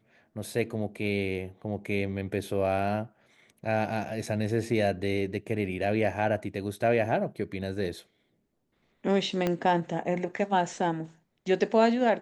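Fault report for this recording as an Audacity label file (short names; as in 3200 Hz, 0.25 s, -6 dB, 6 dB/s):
4.260000	4.260000	gap 3.7 ms
9.470000	9.470000	pop -14 dBFS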